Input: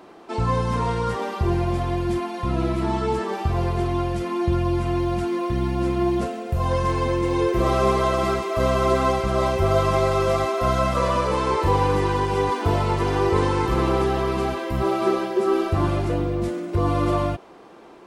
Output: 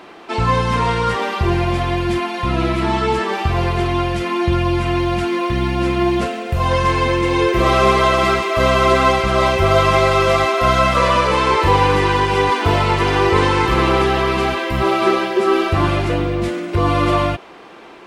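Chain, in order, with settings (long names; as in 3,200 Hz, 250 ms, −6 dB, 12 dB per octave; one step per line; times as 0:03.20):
parametric band 2,500 Hz +9.5 dB 2 octaves
level +4 dB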